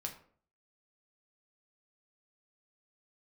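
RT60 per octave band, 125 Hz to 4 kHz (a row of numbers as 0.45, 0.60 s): 0.60, 0.60, 0.55, 0.50, 0.40, 0.30 s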